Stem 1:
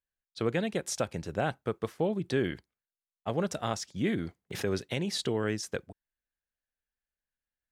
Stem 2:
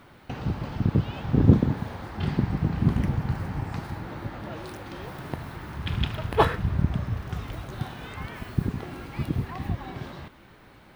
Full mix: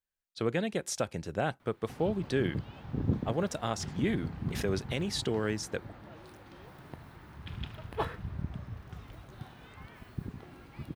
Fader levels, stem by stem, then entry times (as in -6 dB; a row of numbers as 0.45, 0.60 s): -1.0, -13.0 dB; 0.00, 1.60 s